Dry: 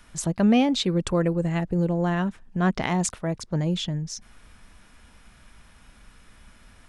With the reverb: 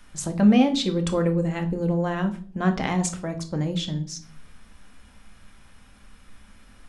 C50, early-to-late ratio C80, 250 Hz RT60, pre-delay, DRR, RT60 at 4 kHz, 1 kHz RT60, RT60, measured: 13.5 dB, 19.5 dB, 0.75 s, 4 ms, 5.0 dB, 0.35 s, 0.35 s, 0.45 s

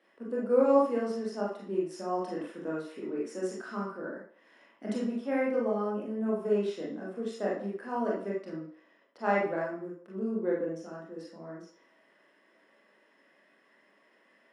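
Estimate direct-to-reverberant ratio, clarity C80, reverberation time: -6.0 dB, 7.0 dB, 0.50 s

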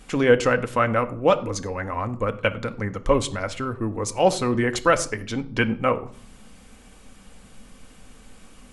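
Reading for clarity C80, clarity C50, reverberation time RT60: 19.5 dB, 16.5 dB, 0.55 s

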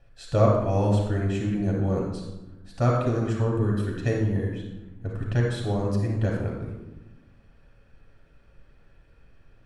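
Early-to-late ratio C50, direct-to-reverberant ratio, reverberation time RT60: 1.5 dB, -2.5 dB, 1.1 s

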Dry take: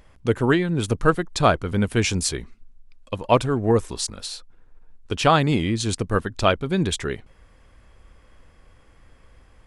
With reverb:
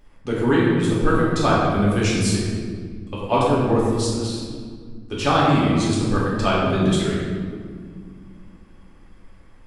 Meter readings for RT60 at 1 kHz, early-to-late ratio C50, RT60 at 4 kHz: 1.7 s, -1.0 dB, 1.2 s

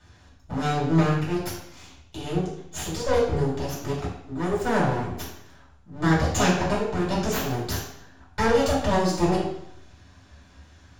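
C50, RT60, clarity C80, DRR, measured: 3.0 dB, 0.70 s, 6.0 dB, -8.0 dB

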